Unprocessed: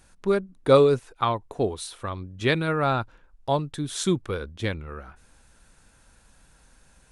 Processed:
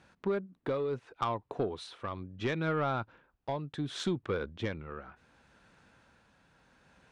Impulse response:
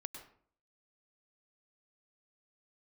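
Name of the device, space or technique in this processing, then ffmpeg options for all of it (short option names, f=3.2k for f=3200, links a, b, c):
AM radio: -af "highpass=110,lowpass=3.4k,acompressor=threshold=-25dB:ratio=8,asoftclip=type=tanh:threshold=-21dB,tremolo=f=0.7:d=0.34"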